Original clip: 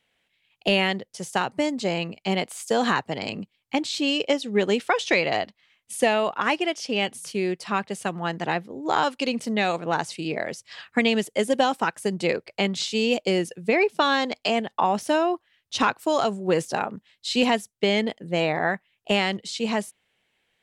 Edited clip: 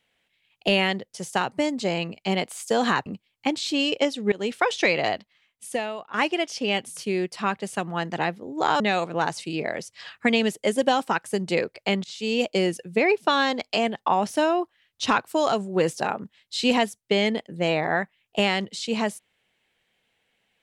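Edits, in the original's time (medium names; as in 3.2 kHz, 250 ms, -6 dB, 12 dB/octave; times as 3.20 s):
3.06–3.34 s: delete
4.60–4.85 s: fade in, from -21 dB
5.38–6.42 s: fade out, to -16.5 dB
9.08–9.52 s: delete
12.76–13.26 s: fade in equal-power, from -22 dB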